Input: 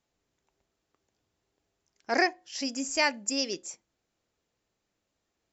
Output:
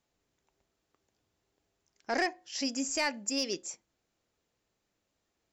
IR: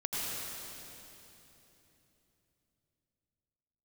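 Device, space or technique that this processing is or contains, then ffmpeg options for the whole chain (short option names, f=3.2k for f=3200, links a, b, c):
soft clipper into limiter: -af "asoftclip=type=tanh:threshold=-16.5dB,alimiter=limit=-21dB:level=0:latency=1:release=120"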